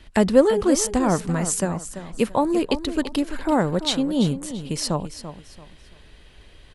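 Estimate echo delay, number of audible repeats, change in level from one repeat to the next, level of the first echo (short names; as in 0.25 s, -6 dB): 0.338 s, 3, -10.5 dB, -12.0 dB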